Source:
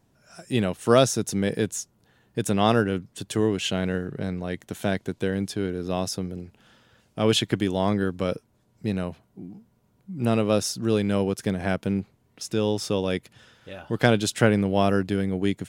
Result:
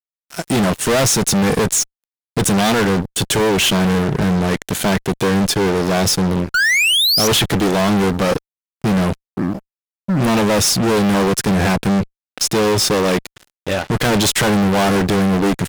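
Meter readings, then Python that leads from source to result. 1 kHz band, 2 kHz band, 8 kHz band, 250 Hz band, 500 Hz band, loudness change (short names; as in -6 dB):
+10.0 dB, +13.0 dB, +15.0 dB, +8.5 dB, +6.5 dB, +9.0 dB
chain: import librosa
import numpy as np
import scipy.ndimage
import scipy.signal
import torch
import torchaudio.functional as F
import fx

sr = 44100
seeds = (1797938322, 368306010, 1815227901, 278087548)

y = fx.spec_paint(x, sr, seeds[0], shape='rise', start_s=6.54, length_s=0.74, low_hz=1400.0, high_hz=6100.0, level_db=-29.0)
y = fx.fuzz(y, sr, gain_db=38.0, gate_db=-45.0)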